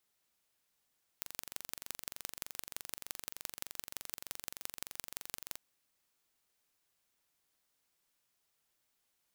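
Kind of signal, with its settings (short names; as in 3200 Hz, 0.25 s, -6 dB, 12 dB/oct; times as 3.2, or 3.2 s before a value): pulse train 23.3/s, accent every 4, -10.5 dBFS 4.37 s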